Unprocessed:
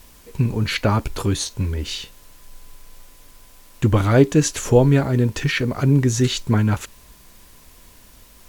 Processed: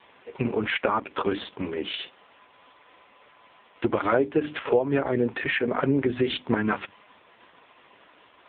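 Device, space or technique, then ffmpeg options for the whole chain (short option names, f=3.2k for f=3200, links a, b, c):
voicemail: -af "highpass=380,lowpass=3.2k,bandreject=f=50:t=h:w=6,bandreject=f=100:t=h:w=6,bandreject=f=150:t=h:w=6,bandreject=f=200:t=h:w=6,bandreject=f=250:t=h:w=6,bandreject=f=300:t=h:w=6,acompressor=threshold=-25dB:ratio=10,volume=7.5dB" -ar 8000 -c:a libopencore_amrnb -b:a 4750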